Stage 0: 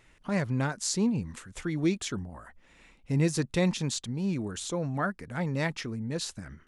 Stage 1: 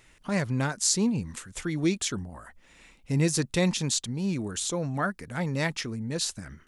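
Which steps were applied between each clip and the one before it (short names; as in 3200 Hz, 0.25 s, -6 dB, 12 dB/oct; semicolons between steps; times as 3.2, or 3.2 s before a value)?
high shelf 3700 Hz +7.5 dB; gain +1 dB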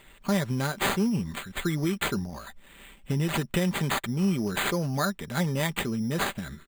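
sample-and-hold 8×; compressor 10:1, threshold -27 dBFS, peak gain reduction 9 dB; comb 5.1 ms, depth 40%; gain +4 dB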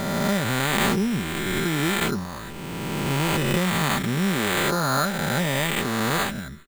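spectral swells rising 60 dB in 2.73 s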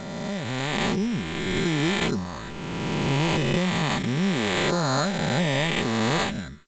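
dynamic EQ 1400 Hz, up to -8 dB, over -42 dBFS, Q 3; AGC gain up to 11.5 dB; gain -8 dB; G.722 64 kbps 16000 Hz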